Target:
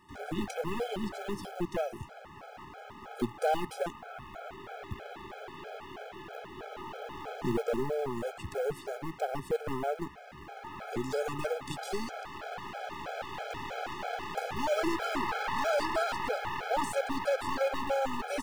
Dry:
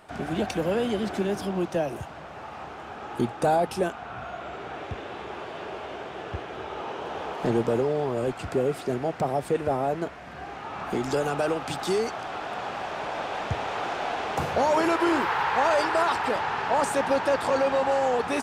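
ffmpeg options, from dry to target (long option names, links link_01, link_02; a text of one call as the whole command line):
ffmpeg -i in.wav -af "acrusher=bits=7:mode=log:mix=0:aa=0.000001,aeval=exprs='0.282*(cos(1*acos(clip(val(0)/0.282,-1,1)))-cos(1*PI/2))+0.0282*(cos(8*acos(clip(val(0)/0.282,-1,1)))-cos(8*PI/2))':channel_layout=same,afftfilt=real='re*gt(sin(2*PI*3.1*pts/sr)*(1-2*mod(floor(b*sr/1024/430),2)),0)':imag='im*gt(sin(2*PI*3.1*pts/sr)*(1-2*mod(floor(b*sr/1024/430),2)),0)':win_size=1024:overlap=0.75,volume=-5dB" out.wav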